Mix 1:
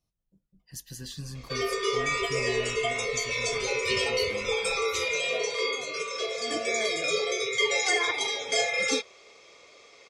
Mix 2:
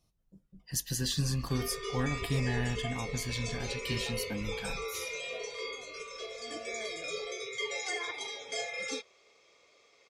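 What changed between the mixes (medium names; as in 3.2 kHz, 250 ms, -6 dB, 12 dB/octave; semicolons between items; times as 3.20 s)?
speech +8.0 dB; background -10.5 dB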